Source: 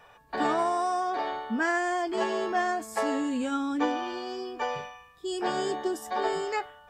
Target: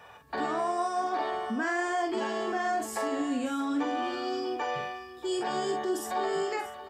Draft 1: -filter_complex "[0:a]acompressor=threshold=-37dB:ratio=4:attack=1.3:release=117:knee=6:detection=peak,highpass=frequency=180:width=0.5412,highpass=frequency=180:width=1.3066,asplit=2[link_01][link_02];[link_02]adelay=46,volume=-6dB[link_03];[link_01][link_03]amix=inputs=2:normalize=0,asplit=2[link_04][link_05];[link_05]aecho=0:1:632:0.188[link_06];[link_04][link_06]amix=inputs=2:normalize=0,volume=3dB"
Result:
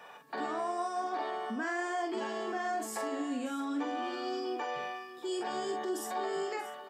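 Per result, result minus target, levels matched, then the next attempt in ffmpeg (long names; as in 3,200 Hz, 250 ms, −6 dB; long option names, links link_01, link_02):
downward compressor: peak gain reduction +5 dB; 125 Hz band −4.0 dB
-filter_complex "[0:a]acompressor=threshold=-30.5dB:ratio=4:attack=1.3:release=117:knee=6:detection=peak,highpass=frequency=180:width=0.5412,highpass=frequency=180:width=1.3066,asplit=2[link_01][link_02];[link_02]adelay=46,volume=-6dB[link_03];[link_01][link_03]amix=inputs=2:normalize=0,asplit=2[link_04][link_05];[link_05]aecho=0:1:632:0.188[link_06];[link_04][link_06]amix=inputs=2:normalize=0,volume=3dB"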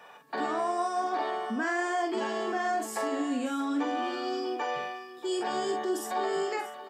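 125 Hz band −4.0 dB
-filter_complex "[0:a]acompressor=threshold=-30.5dB:ratio=4:attack=1.3:release=117:knee=6:detection=peak,highpass=frequency=57:width=0.5412,highpass=frequency=57:width=1.3066,asplit=2[link_01][link_02];[link_02]adelay=46,volume=-6dB[link_03];[link_01][link_03]amix=inputs=2:normalize=0,asplit=2[link_04][link_05];[link_05]aecho=0:1:632:0.188[link_06];[link_04][link_06]amix=inputs=2:normalize=0,volume=3dB"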